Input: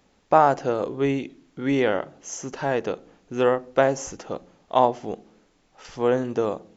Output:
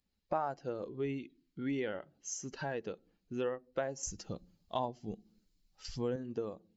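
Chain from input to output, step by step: per-bin expansion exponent 1.5; 4.03–6.16 tone controls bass +10 dB, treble +10 dB; compressor 2.5:1, threshold -37 dBFS, peak gain reduction 16.5 dB; gain -1.5 dB

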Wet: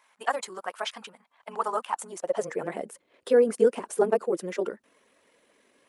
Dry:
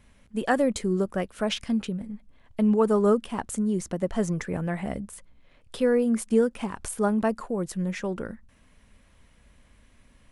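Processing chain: bin magnitudes rounded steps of 15 dB; high-pass sweep 930 Hz -> 400 Hz, 3.37–4.74; granular stretch 0.57×, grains 44 ms

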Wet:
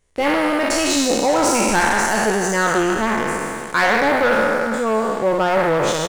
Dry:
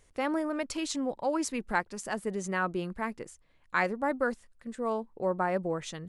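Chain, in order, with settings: spectral trails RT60 2.51 s; sample leveller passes 3; doubler 14 ms -11 dB

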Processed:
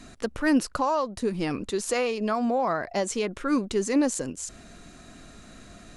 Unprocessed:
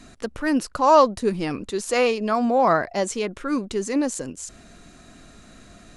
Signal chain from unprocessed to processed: 0.76–3.42 compressor 10:1, threshold -22 dBFS, peak gain reduction 12.5 dB

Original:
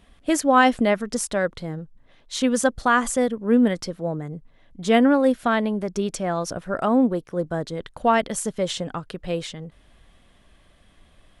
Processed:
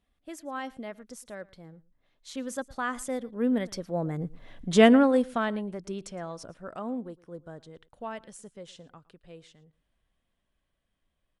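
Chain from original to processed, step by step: Doppler pass-by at 4.5, 9 m/s, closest 1.5 m; on a send: echo 0.113 s -22 dB; on the sum: gain +7.5 dB

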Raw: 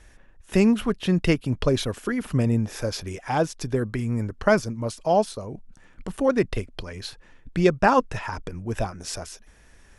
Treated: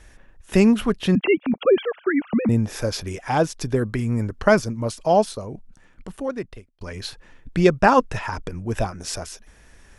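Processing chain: 1.15–2.49 sine-wave speech; 5.27–6.81 fade out; gain +3 dB

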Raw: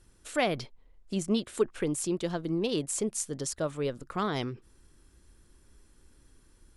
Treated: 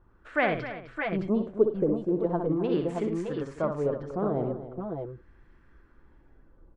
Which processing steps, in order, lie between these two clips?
LFO low-pass sine 0.41 Hz 570–1900 Hz; tapped delay 63/105/258/329/615/621 ms -7/-17/-13/-18/-8/-8 dB

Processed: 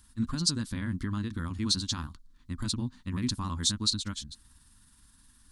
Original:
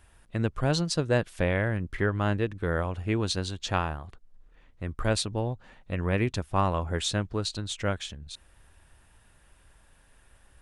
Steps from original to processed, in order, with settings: granular stretch 0.52×, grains 0.105 s; limiter -20 dBFS, peak gain reduction 8 dB; EQ curve 160 Hz 0 dB, 250 Hz +9 dB, 440 Hz -17 dB, 700 Hz -20 dB, 1000 Hz -1 dB, 2600 Hz -7 dB, 4200 Hz +10 dB, 6000 Hz +8 dB; gain -1 dB

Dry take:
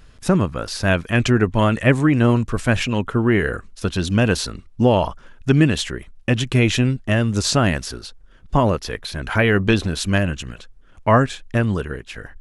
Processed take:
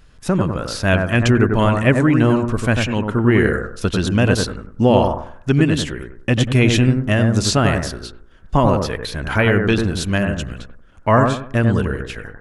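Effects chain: AGC; on a send: analogue delay 95 ms, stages 1024, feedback 31%, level -4 dB; on the sum: gain -2 dB

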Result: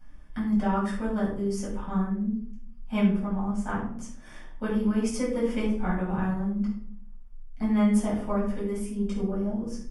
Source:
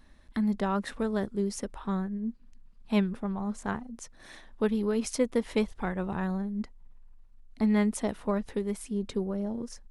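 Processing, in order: Butterworth band-stop 4000 Hz, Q 4.8; shoebox room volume 660 m³, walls furnished, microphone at 7.8 m; gain -9 dB

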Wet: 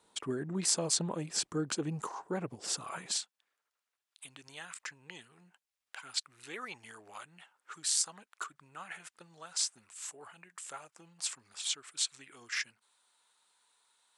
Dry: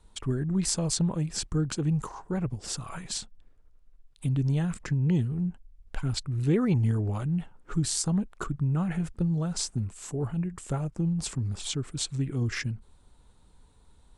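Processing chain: HPF 320 Hz 12 dB/oct, from 3.16 s 1300 Hz

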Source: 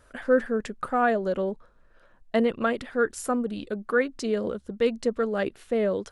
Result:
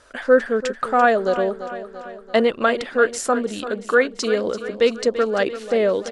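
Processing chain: LPF 5100 Hz 12 dB/oct; tone controls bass -10 dB, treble +11 dB; on a send: feedback echo 0.339 s, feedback 57%, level -13 dB; on the sum: gain +7.5 dB

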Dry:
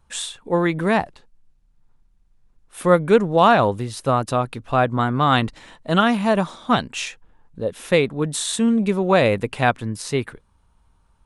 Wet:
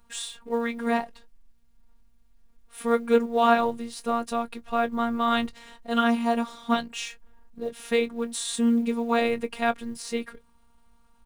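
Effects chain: G.711 law mismatch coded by mu; doubler 21 ms -13.5 dB; robotiser 233 Hz; gain -5 dB

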